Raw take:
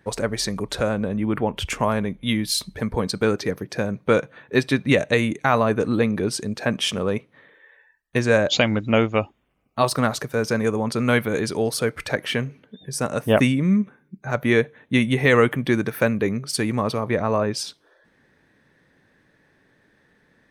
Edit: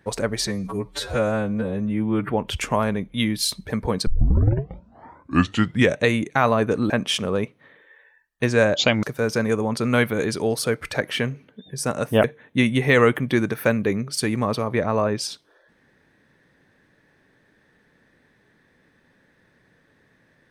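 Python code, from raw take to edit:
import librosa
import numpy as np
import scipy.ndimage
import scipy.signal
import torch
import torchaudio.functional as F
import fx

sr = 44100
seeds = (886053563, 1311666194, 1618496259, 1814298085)

y = fx.edit(x, sr, fx.stretch_span(start_s=0.47, length_s=0.91, factor=2.0),
    fx.tape_start(start_s=3.16, length_s=1.93),
    fx.cut(start_s=5.99, length_s=0.64),
    fx.cut(start_s=8.76, length_s=1.42),
    fx.cut(start_s=13.39, length_s=1.21), tone=tone)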